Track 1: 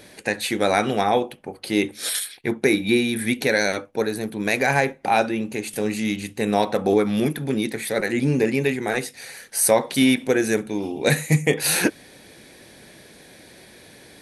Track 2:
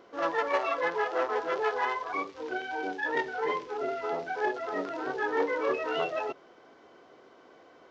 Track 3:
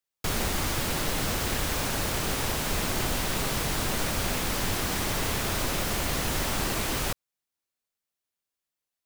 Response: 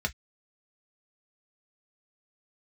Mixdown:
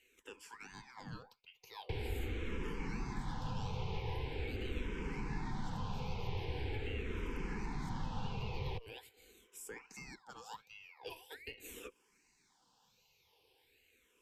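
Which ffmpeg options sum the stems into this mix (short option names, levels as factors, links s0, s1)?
-filter_complex "[0:a]aeval=exprs='val(0)*sin(2*PI*1600*n/s+1600*0.5/1.3*sin(2*PI*1.3*n/s))':c=same,volume=0.126[s0];[1:a]highpass=970,adelay=2300,volume=0.531[s1];[2:a]lowpass=1900,adelay=1650,volume=1.06[s2];[s0][s1][s2]amix=inputs=3:normalize=0,superequalizer=7b=1.58:8b=0.282:10b=0.316:11b=0.398:16b=0.447,acrossover=split=190|1100[s3][s4][s5];[s3]acompressor=threshold=0.02:ratio=4[s6];[s4]acompressor=threshold=0.00562:ratio=4[s7];[s5]acompressor=threshold=0.00447:ratio=4[s8];[s6][s7][s8]amix=inputs=3:normalize=0,asplit=2[s9][s10];[s10]afreqshift=-0.43[s11];[s9][s11]amix=inputs=2:normalize=1"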